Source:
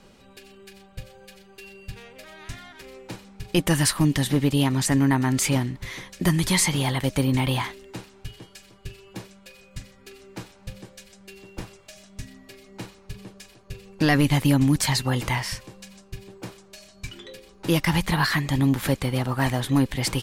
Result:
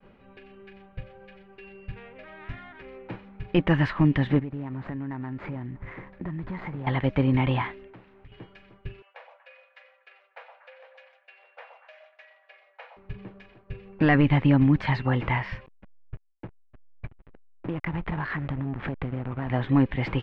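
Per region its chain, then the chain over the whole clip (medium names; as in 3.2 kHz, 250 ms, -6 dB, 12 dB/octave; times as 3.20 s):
4.39–6.87 s: median filter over 15 samples + compression 4:1, threshold -32 dBFS
7.87–8.32 s: compression 3:1, threshold -48 dBFS + loudspeaker Doppler distortion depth 0.66 ms
9.02–12.97 s: rippled Chebyshev high-pass 490 Hz, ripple 3 dB + repeats whose band climbs or falls 119 ms, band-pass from 770 Hz, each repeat 0.7 oct, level -3.5 dB
15.66–19.50 s: compression 10:1, threshold -24 dBFS + hysteresis with a dead band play -27 dBFS
whole clip: expander -50 dBFS; low-pass 2.5 kHz 24 dB/octave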